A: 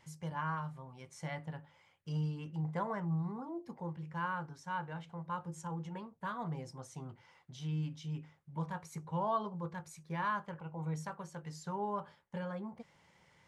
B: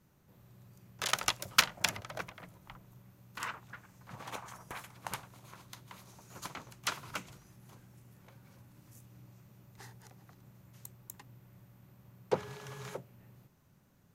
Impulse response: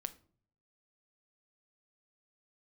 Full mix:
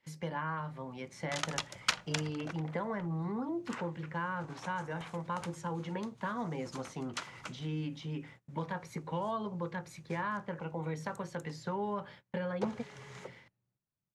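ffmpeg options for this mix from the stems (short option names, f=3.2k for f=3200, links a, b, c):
-filter_complex "[0:a]equalizer=f=125:t=o:w=1:g=-4,equalizer=f=250:t=o:w=1:g=9,equalizer=f=500:t=o:w=1:g=6,equalizer=f=2k:t=o:w=1:g=9,equalizer=f=4k:t=o:w=1:g=7,equalizer=f=8k:t=o:w=1:g=-4,acrossover=split=190|1600[a][b][c];[a]acompressor=threshold=-47dB:ratio=4[d];[b]acompressor=threshold=-39dB:ratio=4[e];[c]acompressor=threshold=-54dB:ratio=4[f];[d][e][f]amix=inputs=3:normalize=0,volume=2.5dB,asplit=2[g][h];[h]volume=-19.5dB[i];[1:a]lowpass=f=9k:w=0.5412,lowpass=f=9k:w=1.3066,adelay=300,volume=-8dB,asplit=2[j][k];[k]volume=-6dB[l];[2:a]atrim=start_sample=2205[m];[i][l]amix=inputs=2:normalize=0[n];[n][m]afir=irnorm=-1:irlink=0[o];[g][j][o]amix=inputs=3:normalize=0,agate=range=-22dB:threshold=-54dB:ratio=16:detection=peak"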